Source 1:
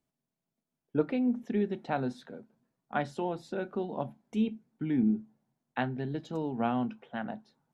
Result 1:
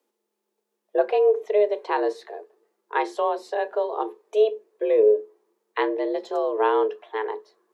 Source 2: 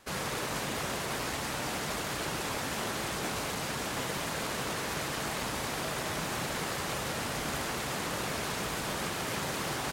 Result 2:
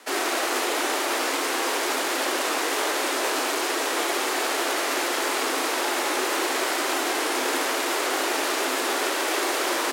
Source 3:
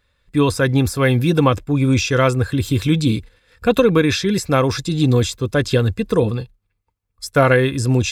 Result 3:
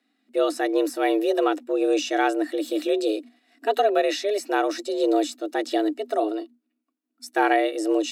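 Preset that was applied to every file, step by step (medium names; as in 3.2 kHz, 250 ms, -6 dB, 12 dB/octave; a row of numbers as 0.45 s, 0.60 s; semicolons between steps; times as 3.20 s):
harmonic-percussive split percussive -4 dB; frequency shift +210 Hz; normalise loudness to -24 LUFS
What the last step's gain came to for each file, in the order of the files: +9.5 dB, +11.0 dB, -5.5 dB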